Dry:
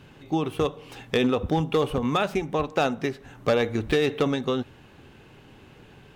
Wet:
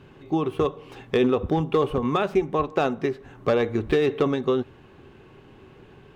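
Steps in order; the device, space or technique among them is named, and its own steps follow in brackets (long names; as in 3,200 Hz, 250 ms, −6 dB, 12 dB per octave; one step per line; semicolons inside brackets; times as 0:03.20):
inside a helmet (high-shelf EQ 3,800 Hz −9.5 dB; hollow resonant body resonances 380/1,100 Hz, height 7 dB)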